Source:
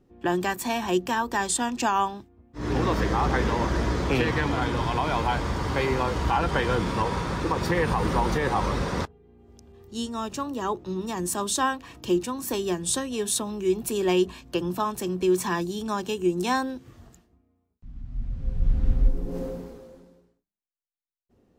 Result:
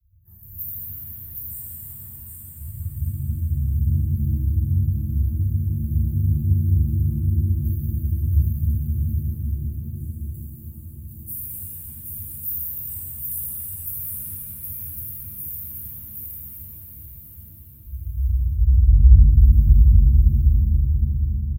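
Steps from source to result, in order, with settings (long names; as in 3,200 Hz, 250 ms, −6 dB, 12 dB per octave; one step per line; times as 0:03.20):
inverse Chebyshev band-stop filter 240–6,000 Hz, stop band 60 dB
frequency shifter +24 Hz
in parallel at −1 dB: downward compressor, threshold −38 dBFS, peak gain reduction 22 dB
on the sum: high-shelf EQ 5,800 Hz +7 dB
comb filter 3.3 ms, depth 39%
repeating echo 768 ms, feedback 29%, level −3 dB
reverb with rising layers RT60 3.6 s, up +7 semitones, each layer −8 dB, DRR −9.5 dB
level −3 dB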